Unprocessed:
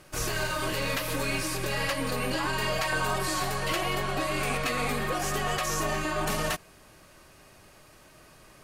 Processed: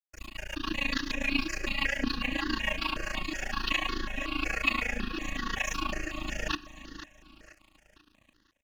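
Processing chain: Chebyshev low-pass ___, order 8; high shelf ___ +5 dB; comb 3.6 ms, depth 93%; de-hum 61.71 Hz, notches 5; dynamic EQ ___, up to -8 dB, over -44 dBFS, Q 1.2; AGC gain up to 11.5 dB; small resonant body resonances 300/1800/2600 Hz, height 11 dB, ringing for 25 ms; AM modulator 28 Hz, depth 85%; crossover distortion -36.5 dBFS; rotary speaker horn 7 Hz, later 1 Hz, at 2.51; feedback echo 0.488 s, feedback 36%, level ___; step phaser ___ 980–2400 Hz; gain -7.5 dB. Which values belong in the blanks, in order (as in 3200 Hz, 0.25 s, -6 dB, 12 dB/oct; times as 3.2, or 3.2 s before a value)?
7000 Hz, 3500 Hz, 570 Hz, -13 dB, 5.4 Hz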